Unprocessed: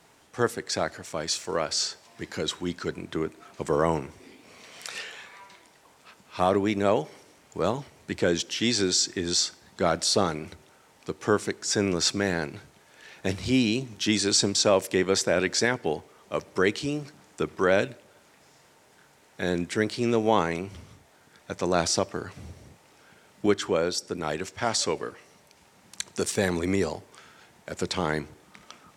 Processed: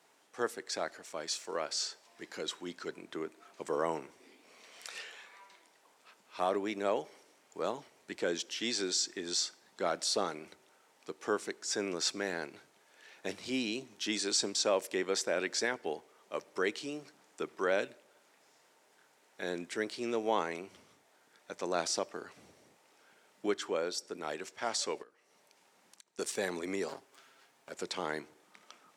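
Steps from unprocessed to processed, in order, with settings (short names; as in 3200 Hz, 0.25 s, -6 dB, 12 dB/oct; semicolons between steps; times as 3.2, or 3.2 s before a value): 26.88–27.69 minimum comb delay 7.4 ms; HPF 300 Hz 12 dB/oct; 25.02–26.19 compressor 10:1, threshold -48 dBFS, peak gain reduction 21.5 dB; gain -8 dB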